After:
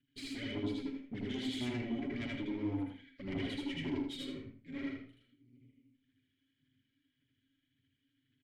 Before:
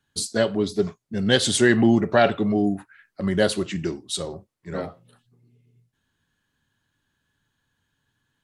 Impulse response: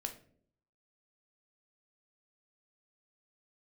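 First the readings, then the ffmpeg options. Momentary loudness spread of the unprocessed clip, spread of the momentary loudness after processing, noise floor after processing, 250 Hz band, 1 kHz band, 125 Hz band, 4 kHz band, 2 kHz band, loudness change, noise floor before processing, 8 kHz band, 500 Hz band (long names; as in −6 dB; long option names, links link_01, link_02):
15 LU, 7 LU, −82 dBFS, −14.5 dB, −23.5 dB, −16.0 dB, −16.5 dB, −19.0 dB, −17.5 dB, −76 dBFS, −28.0 dB, −22.5 dB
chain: -filter_complex "[0:a]bandreject=frequency=5800:width=12,aeval=exprs='max(val(0),0)':channel_layout=same,aecho=1:1:7.4:0.67,acompressor=threshold=-20dB:ratio=6,alimiter=limit=-17.5dB:level=0:latency=1:release=146,aphaser=in_gain=1:out_gain=1:delay=3.8:decay=0.61:speed=1.8:type=sinusoidal,asplit=3[link_01][link_02][link_03];[link_01]bandpass=frequency=270:width_type=q:width=8,volume=0dB[link_04];[link_02]bandpass=frequency=2290:width_type=q:width=8,volume=-6dB[link_05];[link_03]bandpass=frequency=3010:width_type=q:width=8,volume=-9dB[link_06];[link_04][link_05][link_06]amix=inputs=3:normalize=0,lowshelf=frequency=160:width_type=q:width=1.5:gain=9.5,asoftclip=type=tanh:threshold=-37.5dB,asplit=2[link_07][link_08];[link_08]adelay=81,lowpass=frequency=4600:poles=1,volume=-7dB,asplit=2[link_09][link_10];[link_10]adelay=81,lowpass=frequency=4600:poles=1,volume=0.2,asplit=2[link_11][link_12];[link_12]adelay=81,lowpass=frequency=4600:poles=1,volume=0.2[link_13];[link_07][link_09][link_11][link_13]amix=inputs=4:normalize=0,asplit=2[link_14][link_15];[1:a]atrim=start_sample=2205,afade=type=out:start_time=0.15:duration=0.01,atrim=end_sample=7056,adelay=78[link_16];[link_15][link_16]afir=irnorm=-1:irlink=0,volume=2dB[link_17];[link_14][link_17]amix=inputs=2:normalize=0,volume=3dB"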